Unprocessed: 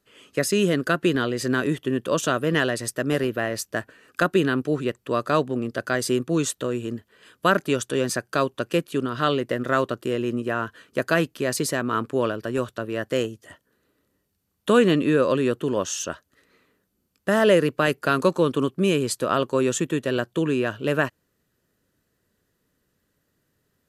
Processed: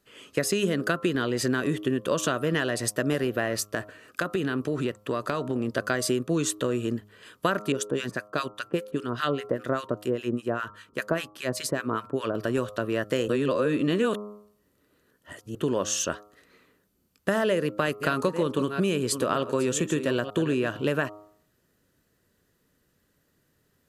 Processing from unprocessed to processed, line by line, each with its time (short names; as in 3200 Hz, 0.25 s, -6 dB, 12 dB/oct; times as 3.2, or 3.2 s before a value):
3.58–5.68 compressor, threshold -24 dBFS
7.72–12.35 harmonic tremolo 5 Hz, depth 100%, crossover 1200 Hz
13.28–15.55 reverse
17.5–20.79 reverse delay 0.467 s, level -13 dB
whole clip: de-hum 104.1 Hz, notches 13; compressor, threshold -24 dBFS; gain +2.5 dB